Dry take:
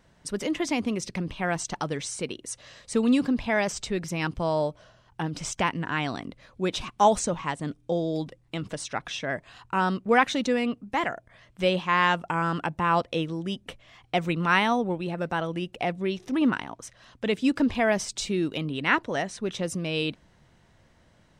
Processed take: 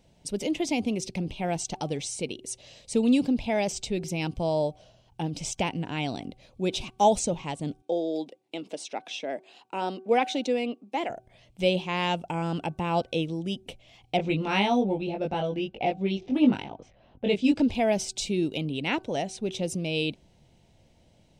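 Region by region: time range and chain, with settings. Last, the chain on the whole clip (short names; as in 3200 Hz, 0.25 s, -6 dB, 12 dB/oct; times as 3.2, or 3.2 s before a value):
7.82–11.1 HPF 260 Hz 24 dB/oct + high shelf 5100 Hz -6.5 dB
14.17–17.61 low-pass opened by the level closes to 1200 Hz, open at -21.5 dBFS + air absorption 63 m + doubler 20 ms -2.5 dB
whole clip: band shelf 1400 Hz -13.5 dB 1.1 oct; de-hum 378.3 Hz, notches 4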